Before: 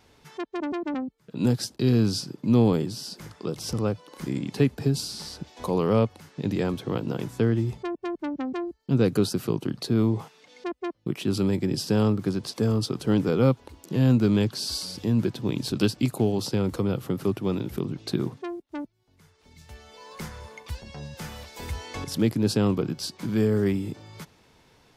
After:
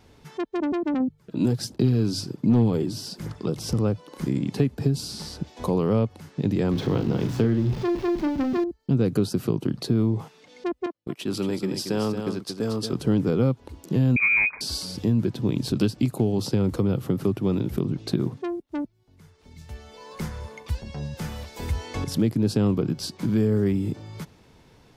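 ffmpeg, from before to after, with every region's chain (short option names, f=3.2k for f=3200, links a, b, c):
-filter_complex "[0:a]asettb=1/sr,asplit=3[a][b][c];[a]atrim=end=1.004[d];[b]atrim=start=1:end=3.49,asetpts=PTS-STARTPTS,afade=t=in:d=0.004:c=qsin,afade=t=out:st=2.486:d=0.004:c=qsin,aphaser=in_gain=1:out_gain=1:delay=3.3:decay=0.39:speed=1.3:type=sinusoidal,volume=10.5dB,asoftclip=hard,volume=-10.5dB,bandreject=f=50:t=h:w=6,bandreject=f=100:t=h:w=6,bandreject=f=150:t=h:w=6[e];[c]atrim=start=3.486[f];[d][e]acrossfade=d=0.004:c1=hsin:c2=qsin[g];[g][f]acrossfade=d=0.004:c1=qsin:c2=hsin,asettb=1/sr,asplit=3[h][i][j];[h]atrim=end=6.714[k];[i]atrim=start=6.71:end=8.64,asetpts=PTS-STARTPTS,afade=t=in:d=0.004:c=qsin,afade=t=out:st=1.926:d=0.004:c=qsin,aeval=exprs='val(0)+0.5*0.0188*sgn(val(0))':c=same,highshelf=f=6.7k:t=q:w=1.5:g=-7.5,asplit=2[l][m];[m]adelay=40,volume=-7.5dB[n];[l][n]amix=inputs=2:normalize=0,atrim=end_sample=85113[o];[j]atrim=start=8.636[p];[k][o]acrossfade=d=0.004:c1=hsin:c2=qsin[q];[q][p]acrossfade=d=0.004:c1=qsin:c2=hsin,asettb=1/sr,asplit=3[r][s][t];[r]atrim=end=10.864[u];[s]atrim=start=10.86:end=12.93,asetpts=PTS-STARTPTS,afade=t=in:d=0.004:c=qsin,afade=t=out:st=2.066:d=0.004:c=qsin,highpass=f=580:p=1,agate=range=-16dB:threshold=-40dB:ratio=16:release=100:detection=peak,aecho=1:1:228:0.398,atrim=end_sample=91287[v];[t]atrim=start=12.926[w];[u][v]acrossfade=d=0.004:c1=hsin:c2=qsin[x];[x][w]acrossfade=d=0.004:c1=qsin:c2=hsin,asettb=1/sr,asplit=3[y][z][aa];[y]atrim=end=14.164[ab];[z]atrim=start=14.16:end=14.61,asetpts=PTS-STARTPTS,afade=t=in:d=0.004:c=qsin,afade=t=out:st=0.446:d=0.004:c=qsin,acontrast=37,lowpass=f=2.2k:t=q:w=0.5098,lowpass=f=2.2k:t=q:w=0.6013,lowpass=f=2.2k:t=q:w=0.9,lowpass=f=2.2k:t=q:w=2.563,afreqshift=-2600[ac];[aa]atrim=start=14.606[ad];[ab][ac]acrossfade=d=0.004:c1=hsin:c2=qsin[ae];[ae][ad]acrossfade=d=0.004:c1=qsin:c2=hsin,lowshelf=f=460:g=7.5,acompressor=threshold=-20dB:ratio=2.5"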